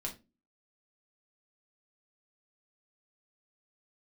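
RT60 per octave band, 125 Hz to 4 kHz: 0.40, 0.45, 0.30, 0.20, 0.20, 0.20 seconds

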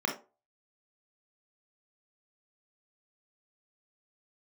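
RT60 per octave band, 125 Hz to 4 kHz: 0.25, 0.30, 0.35, 0.30, 0.20, 0.20 seconds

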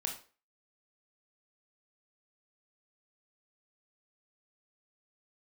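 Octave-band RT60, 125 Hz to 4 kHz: 0.25, 0.35, 0.40, 0.35, 0.35, 0.30 seconds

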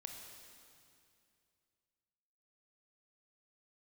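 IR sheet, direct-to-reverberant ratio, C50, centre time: 2.5 dB, 3.5 dB, 73 ms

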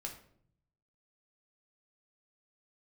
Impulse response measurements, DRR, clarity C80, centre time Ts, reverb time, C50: 1.0 dB, 12.5 dB, 19 ms, 0.60 s, 8.5 dB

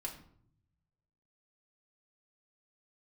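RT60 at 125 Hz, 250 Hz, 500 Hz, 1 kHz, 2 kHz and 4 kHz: 1.5, 1.1, 0.70, 0.60, 0.45, 0.40 seconds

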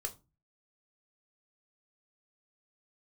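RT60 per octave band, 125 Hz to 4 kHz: 0.55, 0.45, 0.30, 0.25, 0.20, 0.20 seconds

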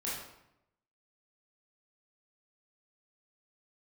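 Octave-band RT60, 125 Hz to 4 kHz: 1.0, 0.95, 0.85, 0.80, 0.70, 0.60 seconds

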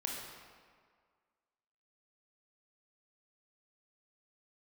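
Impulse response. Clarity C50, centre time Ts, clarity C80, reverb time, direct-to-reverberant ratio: 1.0 dB, 84 ms, 2.5 dB, 1.9 s, −1.5 dB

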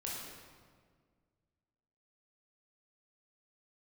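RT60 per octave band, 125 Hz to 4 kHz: 2.4, 2.2, 1.9, 1.6, 1.4, 1.2 seconds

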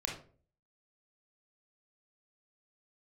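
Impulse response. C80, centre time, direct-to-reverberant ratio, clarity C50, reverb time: 11.0 dB, 30 ms, −1.0 dB, 4.5 dB, 0.45 s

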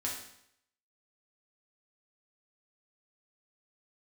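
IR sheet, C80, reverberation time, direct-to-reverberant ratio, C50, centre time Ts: 7.0 dB, 0.70 s, −4.0 dB, 3.5 dB, 40 ms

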